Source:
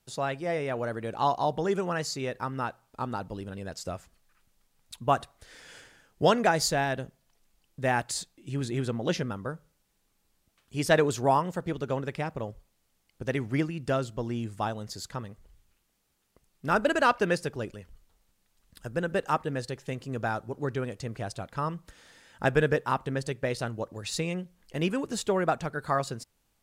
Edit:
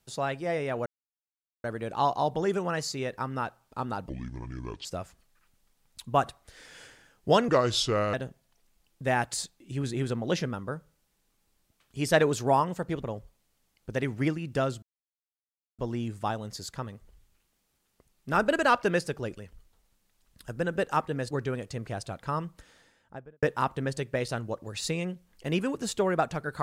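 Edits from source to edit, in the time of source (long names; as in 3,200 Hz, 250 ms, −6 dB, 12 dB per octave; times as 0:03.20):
0:00.86: splice in silence 0.78 s
0:03.31–0:03.79: play speed 63%
0:06.42–0:06.91: play speed 75%
0:11.80–0:12.35: remove
0:14.15: splice in silence 0.96 s
0:19.67–0:20.60: remove
0:21.76–0:22.72: fade out and dull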